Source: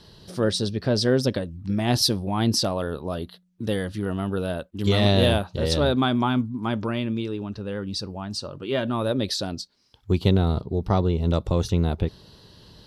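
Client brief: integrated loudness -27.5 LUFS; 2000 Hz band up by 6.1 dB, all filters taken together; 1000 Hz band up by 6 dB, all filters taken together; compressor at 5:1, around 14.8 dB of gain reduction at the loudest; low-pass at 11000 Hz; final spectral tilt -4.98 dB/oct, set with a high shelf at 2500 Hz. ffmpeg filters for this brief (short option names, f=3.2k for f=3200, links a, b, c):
-af "lowpass=11k,equalizer=f=1k:t=o:g=7,equalizer=f=2k:t=o:g=8,highshelf=f=2.5k:g=-5.5,acompressor=threshold=-31dB:ratio=5,volume=7dB"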